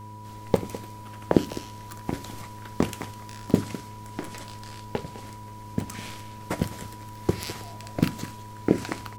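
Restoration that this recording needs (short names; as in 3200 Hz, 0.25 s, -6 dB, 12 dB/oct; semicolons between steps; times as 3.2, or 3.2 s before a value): de-click; de-hum 106 Hz, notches 5; notch 980 Hz, Q 30; inverse comb 0.206 s -15.5 dB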